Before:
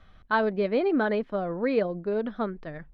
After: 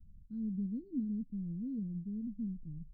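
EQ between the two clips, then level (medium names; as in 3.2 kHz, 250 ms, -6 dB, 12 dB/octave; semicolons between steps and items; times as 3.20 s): inverse Chebyshev band-stop 620–3200 Hz, stop band 60 dB; distance through air 310 m; peaking EQ 390 Hz -7.5 dB 0.32 oct; -1.0 dB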